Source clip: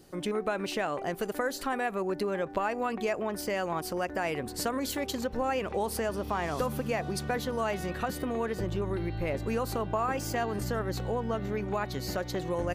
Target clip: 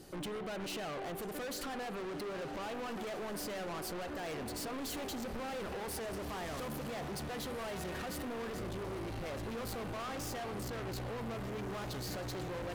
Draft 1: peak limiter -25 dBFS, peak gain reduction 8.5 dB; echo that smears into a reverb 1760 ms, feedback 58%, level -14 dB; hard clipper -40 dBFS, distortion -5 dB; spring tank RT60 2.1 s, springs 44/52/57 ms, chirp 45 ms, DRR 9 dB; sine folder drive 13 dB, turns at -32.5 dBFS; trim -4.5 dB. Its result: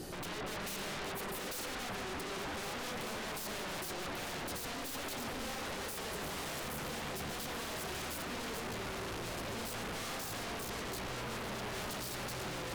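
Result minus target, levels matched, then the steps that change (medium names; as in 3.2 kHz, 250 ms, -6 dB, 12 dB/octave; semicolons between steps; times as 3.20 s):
sine folder: distortion +37 dB
change: sine folder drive 3 dB, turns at -32.5 dBFS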